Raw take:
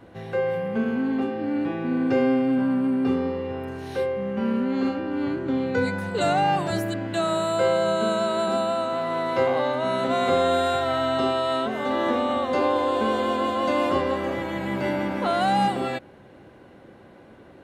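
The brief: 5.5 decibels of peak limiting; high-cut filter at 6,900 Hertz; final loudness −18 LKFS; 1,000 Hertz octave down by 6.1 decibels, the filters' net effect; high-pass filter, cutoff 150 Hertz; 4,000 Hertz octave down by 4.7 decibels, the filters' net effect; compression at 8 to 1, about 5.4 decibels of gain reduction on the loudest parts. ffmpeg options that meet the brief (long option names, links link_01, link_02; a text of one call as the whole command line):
ffmpeg -i in.wav -af "highpass=150,lowpass=6900,equalizer=frequency=1000:width_type=o:gain=-8.5,equalizer=frequency=4000:width_type=o:gain=-5,acompressor=threshold=-25dB:ratio=8,volume=13dB,alimiter=limit=-9.5dB:level=0:latency=1" out.wav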